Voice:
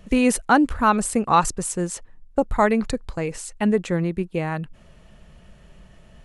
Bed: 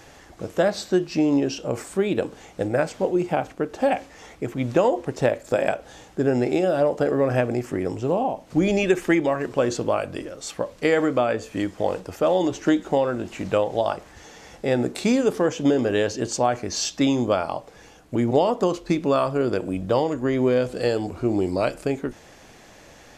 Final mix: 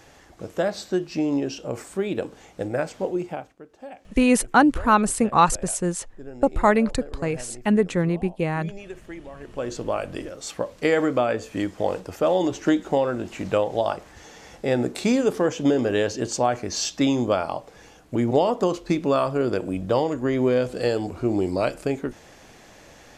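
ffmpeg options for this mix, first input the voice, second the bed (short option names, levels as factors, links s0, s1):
-filter_complex "[0:a]adelay=4050,volume=1.06[s0];[1:a]volume=5.62,afade=t=out:st=3.12:d=0.42:silence=0.16788,afade=t=in:st=9.32:d=0.88:silence=0.11885[s1];[s0][s1]amix=inputs=2:normalize=0"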